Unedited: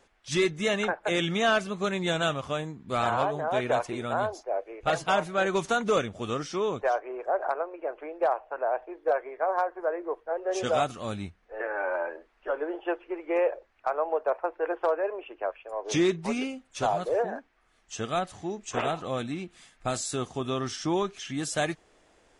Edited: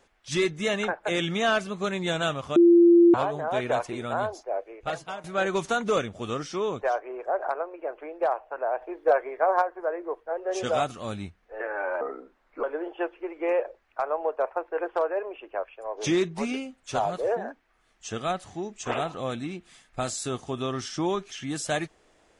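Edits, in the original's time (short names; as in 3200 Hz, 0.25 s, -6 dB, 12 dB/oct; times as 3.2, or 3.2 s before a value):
2.56–3.14 bleep 343 Hz -12 dBFS
4.59–5.24 fade out, to -18.5 dB
8.81–9.62 gain +4.5 dB
12.01–12.51 speed 80%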